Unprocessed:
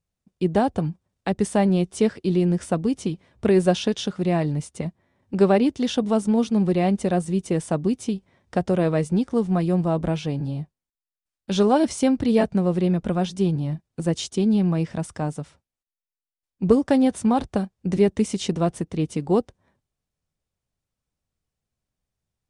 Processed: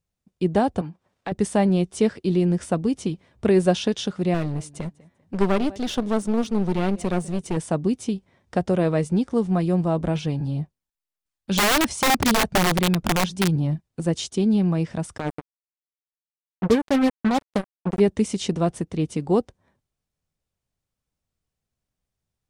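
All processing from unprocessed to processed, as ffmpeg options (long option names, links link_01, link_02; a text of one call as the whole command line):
ffmpeg -i in.wav -filter_complex "[0:a]asettb=1/sr,asplit=3[link_01][link_02][link_03];[link_01]atrim=end=0.814[link_04];[link_02]atrim=start=0.81:end=1.32,asetpts=PTS-STARTPTS,afade=type=in:duration=0.004:curve=qsin,afade=type=out:start_time=0.506:duration=0.004:curve=qsin,acompressor=threshold=-57dB:ratio=1.5:attack=3.2:release=140:knee=1:detection=peak,asplit=2[link_05][link_06];[link_06]highpass=frequency=720:poles=1,volume=21dB,asoftclip=type=tanh:threshold=-13.5dB[link_07];[link_05][link_07]amix=inputs=2:normalize=0,lowpass=frequency=1800:poles=1,volume=-6dB[link_08];[link_03]atrim=start=1.316[link_09];[link_04][link_08]acrossfade=duration=0.004:curve1=hsin:curve2=qsin[link_10];[link_10][link_09]acrossfade=duration=0.004:curve1=qsin:curve2=hsin,asettb=1/sr,asplit=3[link_11][link_12][link_13];[link_11]atrim=end=4.344[link_14];[link_12]atrim=start=4.34:end=7.57,asetpts=PTS-STARTPTS,afade=type=in:duration=0.004:curve=qsin,afade=type=out:start_time=3.226:duration=0.004:curve=qsin,aecho=1:1:197|394:0.0668|0.0154,atrim=end_sample=142443,aeval=exprs='clip(val(0),-1,0.0316)':channel_layout=same[link_15];[link_13]atrim=start=7.566[link_16];[link_14][link_15]acrossfade=duration=0.004:curve1=hsin:curve2=qsin[link_17];[link_17][link_16]acrossfade=duration=0.004:curve1=qsin:curve2=hsin,asettb=1/sr,asplit=3[link_18][link_19][link_20];[link_18]atrim=end=10.154[link_21];[link_19]atrim=start=10.15:end=13.87,asetpts=PTS-STARTPTS,afade=type=in:duration=0.004:curve=qsin,afade=type=out:start_time=3.716:duration=0.004:curve=qsin,aphaser=in_gain=1:out_gain=1:delay=1.2:decay=0.31:speed=2:type=sinusoidal,aeval=exprs='(mod(4.73*val(0)+1,2)-1)/4.73':channel_layout=same[link_22];[link_20]atrim=start=13.866[link_23];[link_21][link_22]acrossfade=duration=0.004:curve1=hsin:curve2=qsin[link_24];[link_24][link_23]acrossfade=duration=0.004:curve1=qsin:curve2=hsin,asettb=1/sr,asplit=3[link_25][link_26][link_27];[link_25]atrim=end=15.184[link_28];[link_26]atrim=start=15.18:end=18,asetpts=PTS-STARTPTS,afade=type=in:duration=0.004:curve=qsin,afade=type=out:start_time=2.816:duration=0.004:curve=qsin,equalizer=frequency=4800:width_type=o:width=1.1:gain=-11.5,tremolo=f=9.6:d=0.43,acrusher=bits=3:mix=0:aa=0.5[link_29];[link_27]atrim=start=17.996[link_30];[link_28][link_29]acrossfade=duration=0.004:curve1=hsin:curve2=qsin[link_31];[link_31][link_30]acrossfade=duration=0.004:curve1=qsin:curve2=hsin" out.wav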